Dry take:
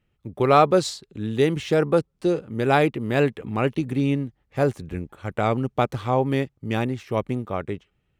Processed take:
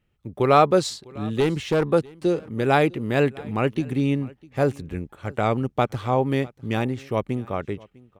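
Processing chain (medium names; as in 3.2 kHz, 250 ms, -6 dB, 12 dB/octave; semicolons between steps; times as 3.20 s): 1.40–1.91 s: one-sided clip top -18.5 dBFS, bottom -12 dBFS; delay 652 ms -23.5 dB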